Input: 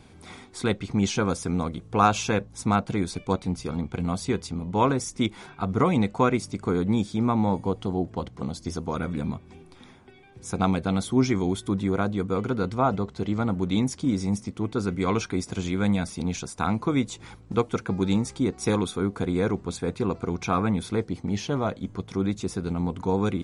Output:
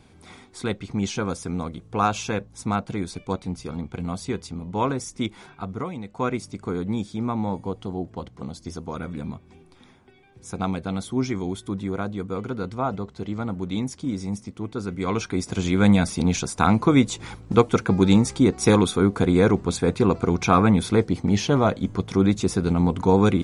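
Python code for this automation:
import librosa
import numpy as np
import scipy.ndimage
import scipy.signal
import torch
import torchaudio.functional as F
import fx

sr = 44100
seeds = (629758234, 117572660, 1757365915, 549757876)

y = fx.gain(x, sr, db=fx.line((5.54, -2.0), (6.02, -13.0), (6.26, -3.0), (14.86, -3.0), (15.86, 7.0)))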